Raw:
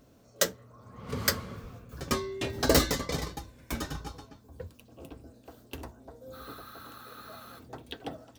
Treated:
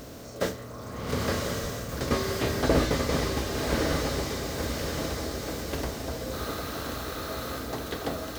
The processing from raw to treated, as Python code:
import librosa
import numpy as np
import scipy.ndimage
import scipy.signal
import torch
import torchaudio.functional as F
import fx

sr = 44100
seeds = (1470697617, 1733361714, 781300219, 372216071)

y = fx.bin_compress(x, sr, power=0.6)
y = fx.echo_diffused(y, sr, ms=1083, feedback_pct=53, wet_db=-4.5)
y = fx.slew_limit(y, sr, full_power_hz=94.0)